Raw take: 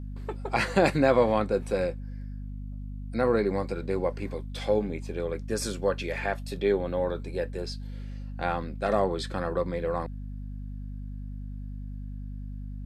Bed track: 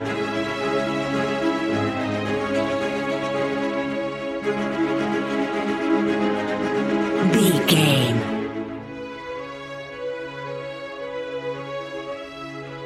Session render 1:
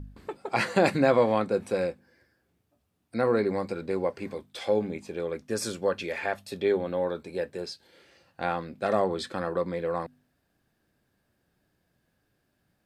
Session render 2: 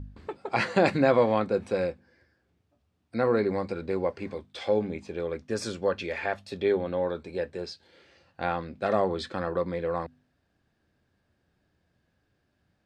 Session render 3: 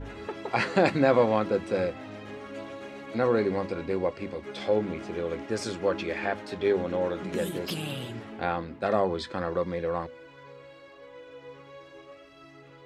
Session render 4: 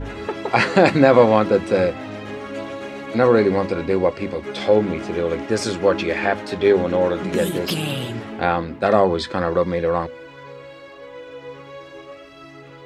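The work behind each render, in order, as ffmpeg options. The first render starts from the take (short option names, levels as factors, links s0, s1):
-af "bandreject=f=50:t=h:w=4,bandreject=f=100:t=h:w=4,bandreject=f=150:t=h:w=4,bandreject=f=200:t=h:w=4,bandreject=f=250:t=h:w=4"
-af "lowpass=5900,equalizer=f=80:w=3.2:g=7.5"
-filter_complex "[1:a]volume=0.141[s0];[0:a][s0]amix=inputs=2:normalize=0"
-af "volume=2.99,alimiter=limit=0.891:level=0:latency=1"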